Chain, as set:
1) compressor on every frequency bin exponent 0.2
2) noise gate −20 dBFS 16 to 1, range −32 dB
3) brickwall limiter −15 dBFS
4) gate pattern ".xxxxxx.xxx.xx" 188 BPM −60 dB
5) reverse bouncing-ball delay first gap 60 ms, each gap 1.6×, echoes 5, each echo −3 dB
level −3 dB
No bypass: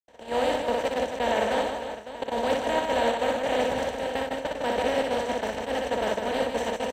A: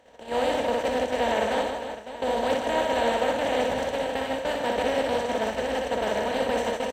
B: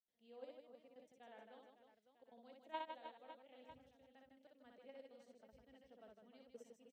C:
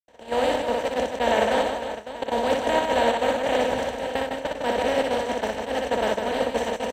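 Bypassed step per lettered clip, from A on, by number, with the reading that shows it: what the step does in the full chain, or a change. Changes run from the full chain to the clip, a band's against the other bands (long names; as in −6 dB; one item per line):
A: 4, change in momentary loudness spread −1 LU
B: 1, 1 kHz band +4.5 dB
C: 3, change in crest factor +1.5 dB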